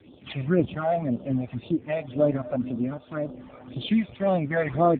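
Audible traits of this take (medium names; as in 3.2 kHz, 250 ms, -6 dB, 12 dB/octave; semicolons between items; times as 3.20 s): tremolo triangle 0.89 Hz, depth 65%; phasing stages 12, 1.9 Hz, lowest notch 300–2000 Hz; AMR-NB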